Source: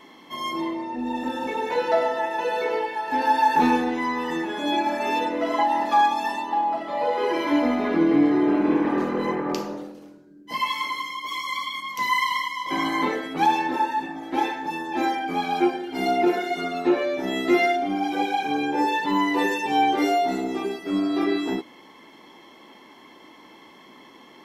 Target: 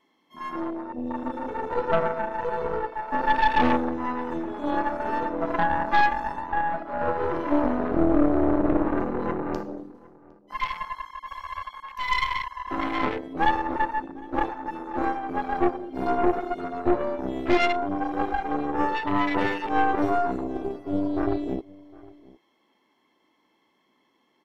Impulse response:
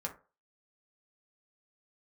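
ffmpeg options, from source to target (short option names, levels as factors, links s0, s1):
-filter_complex "[0:a]afwtdn=0.0501,aeval=exprs='0.355*(cos(1*acos(clip(val(0)/0.355,-1,1)))-cos(1*PI/2))+0.1*(cos(4*acos(clip(val(0)/0.355,-1,1)))-cos(4*PI/2))':c=same,asplit=2[s0][s1];[s1]adelay=758,volume=0.0794,highshelf=f=4000:g=-17.1[s2];[s0][s2]amix=inputs=2:normalize=0,volume=0.708"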